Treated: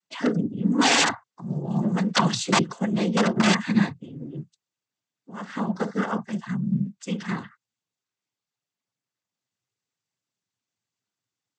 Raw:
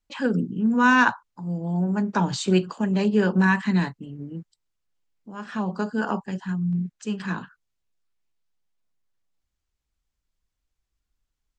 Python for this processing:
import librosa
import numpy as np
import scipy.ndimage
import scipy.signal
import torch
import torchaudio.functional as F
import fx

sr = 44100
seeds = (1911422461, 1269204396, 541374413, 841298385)

y = (np.mod(10.0 ** (12.0 / 20.0) * x + 1.0, 2.0) - 1.0) / 10.0 ** (12.0 / 20.0)
y = fx.peak_eq(y, sr, hz=3700.0, db=11.5, octaves=2.3, at=(1.7, 2.34))
y = fx.noise_vocoder(y, sr, seeds[0], bands=16)